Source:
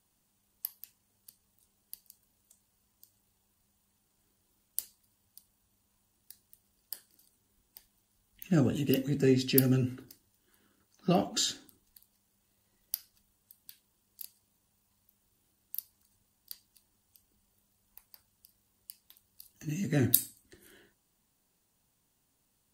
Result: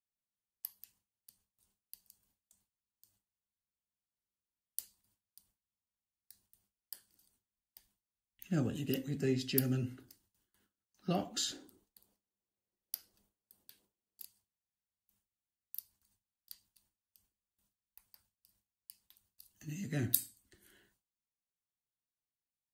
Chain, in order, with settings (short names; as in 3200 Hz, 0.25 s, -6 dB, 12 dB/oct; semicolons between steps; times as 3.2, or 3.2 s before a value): gate with hold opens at -56 dBFS; bell 430 Hz -2.5 dB 2 oct, from 11.52 s +11 dB, from 14.23 s -4.5 dB; gain -6 dB